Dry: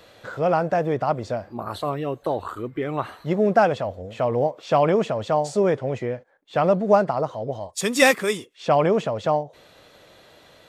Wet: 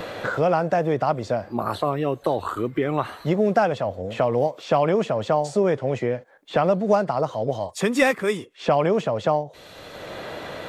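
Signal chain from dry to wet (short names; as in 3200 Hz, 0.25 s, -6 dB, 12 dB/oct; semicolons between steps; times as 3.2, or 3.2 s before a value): vibrato 0.32 Hz 7.9 cents; three-band squash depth 70%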